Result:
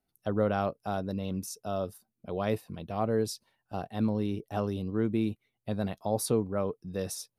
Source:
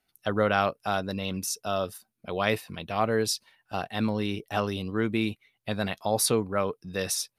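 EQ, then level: peaking EQ 2.1 kHz -11.5 dB 2.4 oct; treble shelf 3 kHz -7.5 dB; 0.0 dB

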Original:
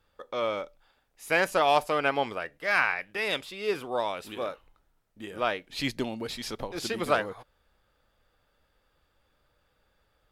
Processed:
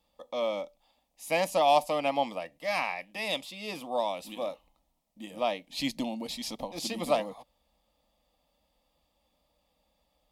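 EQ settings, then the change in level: high-pass 42 Hz; static phaser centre 400 Hz, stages 6; +1.5 dB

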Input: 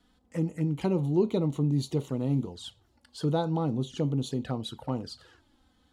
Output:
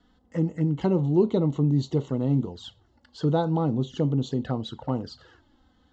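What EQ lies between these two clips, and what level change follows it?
Butterworth band-stop 2.4 kHz, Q 6.6; steep low-pass 7.6 kHz 72 dB/octave; treble shelf 4.3 kHz -9.5 dB; +4.0 dB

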